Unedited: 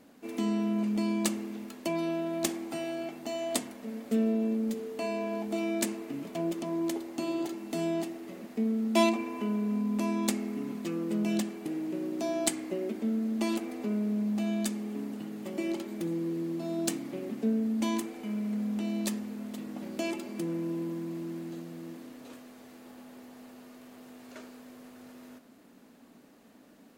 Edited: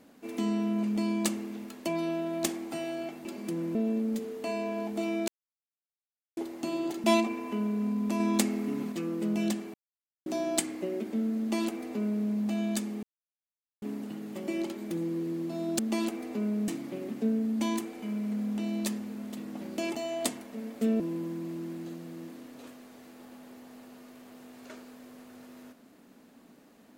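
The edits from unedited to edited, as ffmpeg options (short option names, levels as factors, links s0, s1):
-filter_complex "[0:a]asplit=15[s0][s1][s2][s3][s4][s5][s6][s7][s8][s9][s10][s11][s12][s13][s14];[s0]atrim=end=3.252[s15];[s1]atrim=start=20.158:end=20.662[s16];[s2]atrim=start=4.298:end=5.83,asetpts=PTS-STARTPTS,afade=t=out:st=1.528:d=0.004:c=hsin[s17];[s3]atrim=start=5.83:end=6.92,asetpts=PTS-STARTPTS,volume=0[s18];[s4]atrim=start=6.92:end=7.592,asetpts=PTS-STARTPTS,afade=t=in:d=0.004:c=hsin[s19];[s5]atrim=start=8.928:end=10.092[s20];[s6]atrim=start=10.088:end=10.812,asetpts=PTS-STARTPTS,volume=1.41[s21];[s7]atrim=start=10.808:end=11.63,asetpts=PTS-STARTPTS,afade=t=out:st=0.818:d=0.004:c=hsin[s22];[s8]atrim=start=11.63:end=12.15,asetpts=PTS-STARTPTS,volume=0[s23];[s9]atrim=start=12.15:end=14.92,asetpts=PTS-STARTPTS,afade=t=in:d=0.004:c=hsin,afade=t=out:st=2.766:d=0.004:c=hsin,apad=pad_dur=0.79[s24];[s10]atrim=start=14.92:end=16.892,asetpts=PTS-STARTPTS,afade=t=in:d=0.004:c=hsin[s25];[s11]atrim=start=13.278:end=14.172[s26];[s12]atrim=start=16.888:end=20.162[s27];[s13]atrim=start=3.248:end=4.302[s28];[s14]atrim=start=20.658[s29];[s15][s16]acrossfade=d=0.004:c1=hsin:c2=hsin[s30];[s17][s18][s19]concat=n=3:v=0:a=1[s31];[s30][s31]acrossfade=d=0.004:c1=hsin:c2=hsin[s32];[s32][s20]acrossfade=d=0.004:c1=hsin:c2=hsin[s33];[s33][s21]acrossfade=d=0.004:c1=hsin:c2=hsin[s34];[s22][s23][s24][s25]concat=n=4:v=0:a=1[s35];[s34][s35]acrossfade=d=0.004:c1=hsin:c2=hsin[s36];[s36][s26]acrossfade=d=0.004:c1=hsin:c2=hsin[s37];[s37][s27]acrossfade=d=0.004:c1=hsin:c2=hsin[s38];[s38][s28]acrossfade=d=0.004:c1=hsin:c2=hsin[s39];[s39][s29]acrossfade=d=0.004:c1=hsin:c2=hsin"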